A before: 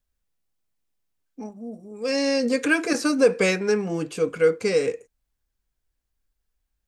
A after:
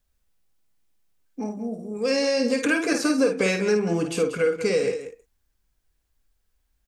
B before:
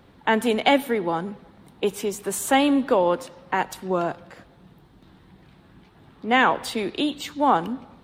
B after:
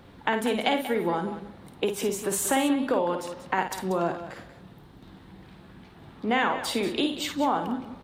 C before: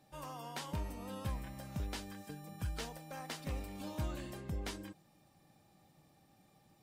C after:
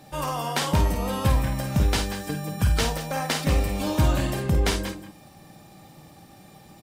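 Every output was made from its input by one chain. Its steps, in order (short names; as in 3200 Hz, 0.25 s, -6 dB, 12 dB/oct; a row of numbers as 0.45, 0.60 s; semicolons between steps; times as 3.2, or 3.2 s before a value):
compressor 3:1, threshold -27 dBFS; on a send: loudspeakers at several distances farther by 18 m -7 dB, 64 m -12 dB; on the sum: normalise peaks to -9 dBFS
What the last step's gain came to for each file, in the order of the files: +5.5, +2.0, +17.5 dB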